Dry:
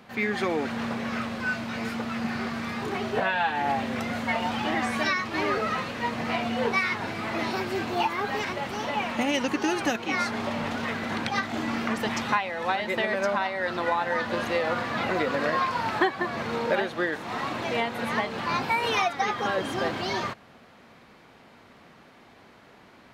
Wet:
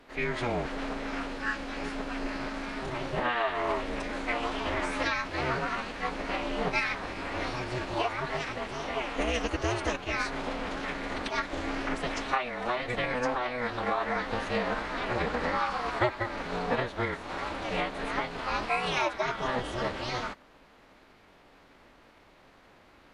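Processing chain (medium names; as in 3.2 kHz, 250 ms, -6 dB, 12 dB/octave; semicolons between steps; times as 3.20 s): ring modulator 190 Hz; formant-preserving pitch shift -7.5 st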